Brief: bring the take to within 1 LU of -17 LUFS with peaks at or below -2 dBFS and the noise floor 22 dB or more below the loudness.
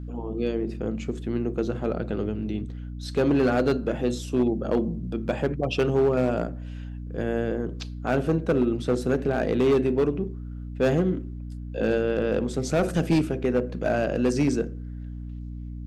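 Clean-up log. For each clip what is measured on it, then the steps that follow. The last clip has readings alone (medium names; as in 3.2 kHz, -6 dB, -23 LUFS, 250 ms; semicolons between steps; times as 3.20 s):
clipped samples 1.4%; clipping level -15.5 dBFS; hum 60 Hz; highest harmonic 300 Hz; hum level -33 dBFS; loudness -25.5 LUFS; peak level -15.5 dBFS; loudness target -17.0 LUFS
-> clip repair -15.5 dBFS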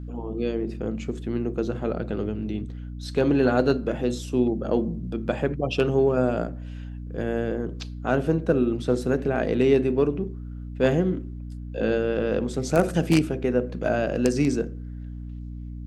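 clipped samples 0.0%; hum 60 Hz; highest harmonic 300 Hz; hum level -33 dBFS
-> de-hum 60 Hz, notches 5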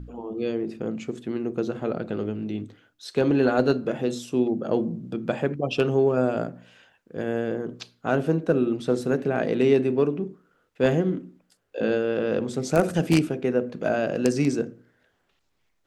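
hum not found; loudness -25.5 LUFS; peak level -6.0 dBFS; loudness target -17.0 LUFS
-> trim +8.5 dB; peak limiter -2 dBFS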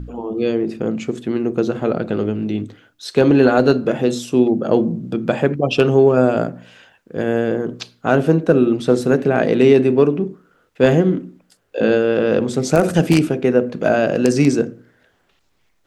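loudness -17.0 LUFS; peak level -2.0 dBFS; noise floor -62 dBFS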